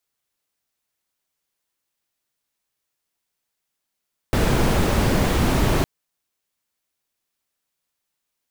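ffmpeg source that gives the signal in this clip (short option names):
-f lavfi -i "anoisesrc=c=brown:a=0.589:d=1.51:r=44100:seed=1"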